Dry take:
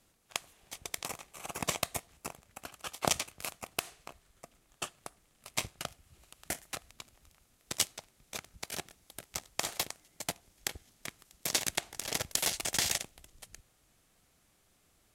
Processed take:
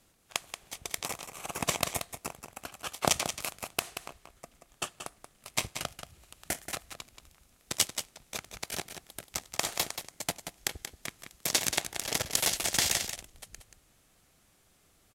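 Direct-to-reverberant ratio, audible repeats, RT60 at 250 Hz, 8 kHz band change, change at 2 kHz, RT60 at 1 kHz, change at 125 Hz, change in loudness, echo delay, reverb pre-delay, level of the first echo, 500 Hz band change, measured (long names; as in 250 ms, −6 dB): no reverb audible, 1, no reverb audible, +3.5 dB, +3.5 dB, no reverb audible, +3.5 dB, +3.5 dB, 181 ms, no reverb audible, −9.0 dB, +3.5 dB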